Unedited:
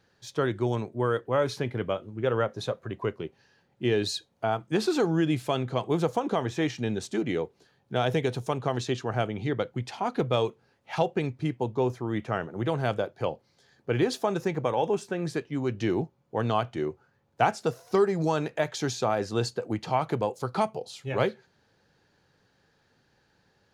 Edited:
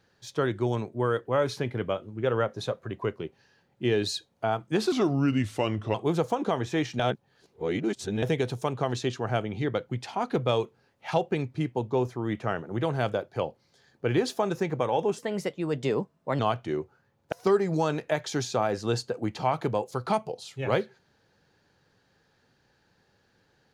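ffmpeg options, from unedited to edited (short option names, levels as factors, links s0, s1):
-filter_complex "[0:a]asplit=8[s0][s1][s2][s3][s4][s5][s6][s7];[s0]atrim=end=4.924[s8];[s1]atrim=start=4.92:end=5.79,asetpts=PTS-STARTPTS,asetrate=37485,aresample=44100[s9];[s2]atrim=start=5.786:end=6.842[s10];[s3]atrim=start=6.838:end=8.072,asetpts=PTS-STARTPTS,areverse[s11];[s4]atrim=start=8.068:end=15.034[s12];[s5]atrim=start=15.03:end=16.48,asetpts=PTS-STARTPTS,asetrate=52920,aresample=44100[s13];[s6]atrim=start=16.476:end=17.412[s14];[s7]atrim=start=17.798[s15];[s8][s9]acrossfade=d=0.004:c1=hsin:c2=hsin[s16];[s16][s10]acrossfade=d=0.004:c1=hsin:c2=hsin[s17];[s17][s11]acrossfade=d=0.004:c1=hsin:c2=hsin[s18];[s18][s12]acrossfade=d=0.004:c1=hsin:c2=hsin[s19];[s19][s13]acrossfade=d=0.004:c1=hsin:c2=hsin[s20];[s20][s14]acrossfade=d=0.004:c1=hsin:c2=hsin[s21];[s21][s15]acrossfade=d=0.004:c1=hsin:c2=hsin"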